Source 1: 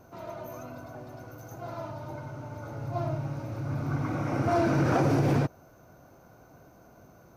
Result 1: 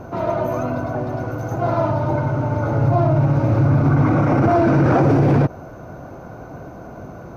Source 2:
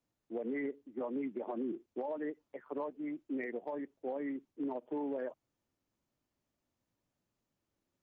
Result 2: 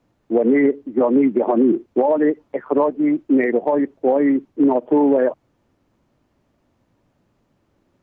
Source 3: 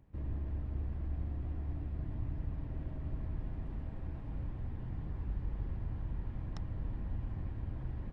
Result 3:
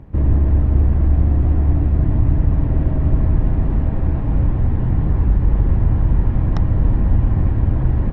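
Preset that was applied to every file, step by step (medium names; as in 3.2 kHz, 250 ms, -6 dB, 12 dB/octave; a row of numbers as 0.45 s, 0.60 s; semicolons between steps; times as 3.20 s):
low-pass 1.4 kHz 6 dB/octave; peak limiter -28 dBFS; normalise loudness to -18 LUFS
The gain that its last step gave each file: +20.0 dB, +22.5 dB, +23.5 dB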